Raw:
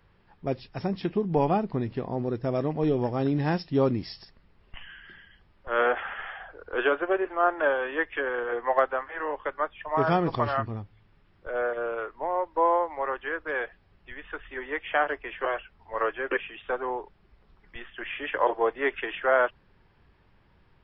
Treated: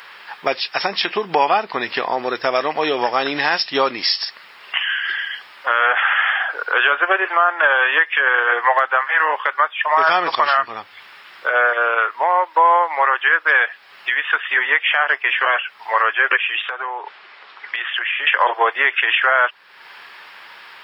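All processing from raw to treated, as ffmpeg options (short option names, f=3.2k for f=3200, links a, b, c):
-filter_complex "[0:a]asettb=1/sr,asplit=3[a][b][c];[a]atrim=end=16.664[d];[b]atrim=start=16.66:end=18.27,asetpts=PTS-STARTPTS,afade=t=in:d=0.004:c=qsin,afade=t=out:st=1.606:d=0.004:c=qsin,acompressor=threshold=-45dB:ratio=6:attack=3.2:release=140:knee=1:detection=peak,highpass=260,lowpass=4.1k[e];[c]atrim=start=18.266[f];[d][e]acrossfade=d=0.004:c1=hsin:c2=qsin[g];[g][f]acrossfade=d=0.004:c1=qsin:c2=hsin,highpass=1.3k,acompressor=threshold=-53dB:ratio=2,alimiter=level_in=35dB:limit=-1dB:release=50:level=0:latency=1,volume=-3.5dB"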